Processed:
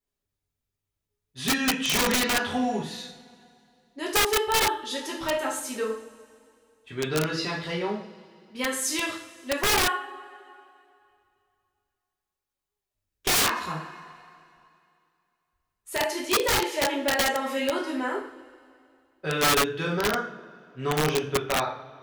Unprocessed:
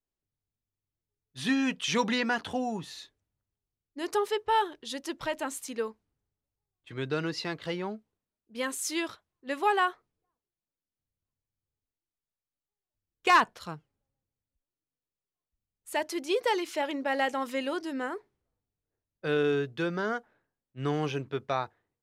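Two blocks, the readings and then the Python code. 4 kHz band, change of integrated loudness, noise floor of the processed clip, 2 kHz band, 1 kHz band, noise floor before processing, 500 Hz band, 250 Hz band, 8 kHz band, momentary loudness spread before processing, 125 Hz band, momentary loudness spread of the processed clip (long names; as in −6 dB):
+9.5 dB, +4.5 dB, below −85 dBFS, +5.0 dB, +1.5 dB, below −85 dBFS, +3.0 dB, +2.0 dB, +12.5 dB, 12 LU, +4.5 dB, 15 LU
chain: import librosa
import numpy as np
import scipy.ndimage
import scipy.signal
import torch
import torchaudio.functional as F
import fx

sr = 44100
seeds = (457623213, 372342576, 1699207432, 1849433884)

y = fx.rev_double_slope(x, sr, seeds[0], early_s=0.5, late_s=2.5, knee_db=-20, drr_db=-4.5)
y = (np.mod(10.0 ** (16.5 / 20.0) * y + 1.0, 2.0) - 1.0) / 10.0 ** (16.5 / 20.0)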